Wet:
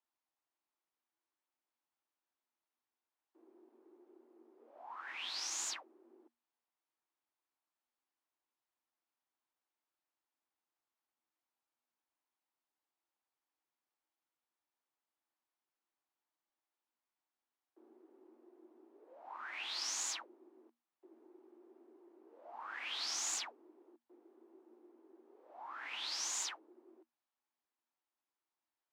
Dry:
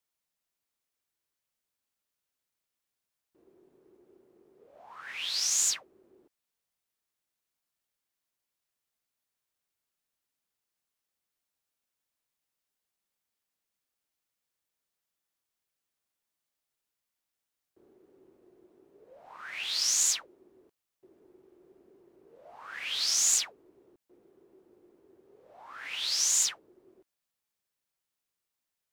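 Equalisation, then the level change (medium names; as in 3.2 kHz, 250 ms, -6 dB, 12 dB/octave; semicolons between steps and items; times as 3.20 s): rippled Chebyshev high-pass 230 Hz, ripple 9 dB; treble shelf 4 kHz -6 dB; treble shelf 9.3 kHz -11 dB; +3.0 dB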